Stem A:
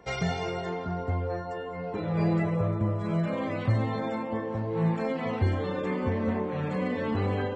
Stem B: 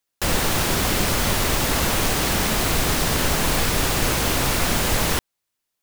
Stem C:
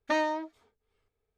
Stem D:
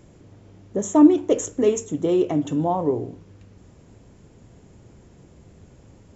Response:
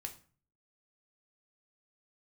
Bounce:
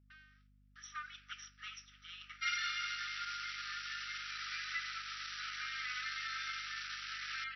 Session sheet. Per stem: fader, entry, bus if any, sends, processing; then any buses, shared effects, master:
0.0 dB, 2.35 s, no send, dry
-10.0 dB, 2.25 s, no send, limiter -16.5 dBFS, peak gain reduction 9.5 dB; hard clip -26.5 dBFS, distortion -9 dB
-5.0 dB, 0.00 s, no send, inverse Chebyshev low-pass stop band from 1800 Hz, stop band 50 dB; soft clip -36 dBFS, distortion -7 dB; auto duck -24 dB, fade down 0.85 s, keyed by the fourth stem
-9.5 dB, 0.00 s, no send, notches 60/120/180/240/300/360/420 Hz; sample leveller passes 1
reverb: off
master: FFT band-pass 1200–5900 Hz; gate with hold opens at -59 dBFS; hum 50 Hz, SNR 24 dB

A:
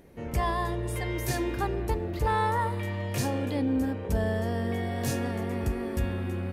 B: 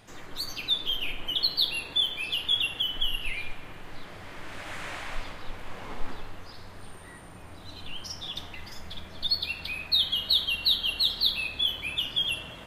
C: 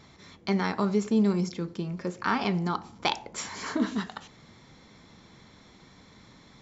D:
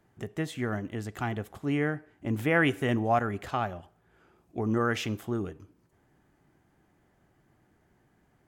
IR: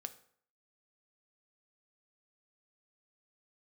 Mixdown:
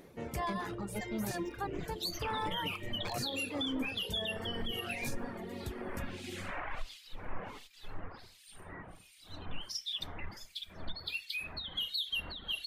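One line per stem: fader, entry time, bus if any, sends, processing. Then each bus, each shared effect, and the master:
+1.5 dB, 0.00 s, no send, low shelf 99 Hz -11.5 dB; auto duck -7 dB, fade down 0.50 s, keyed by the third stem
+2.5 dB, 1.65 s, no send, compressor 5:1, threshold -26 dBFS, peak gain reduction 7 dB; harmonic tremolo 1.4 Hz, depth 100%, crossover 2400 Hz
-12.0 dB, 0.00 s, no send, minimum comb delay 0.84 ms
-17.5 dB, 0.00 s, no send, dry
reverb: off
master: reverb removal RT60 1.3 s; limiter -27 dBFS, peak gain reduction 11 dB

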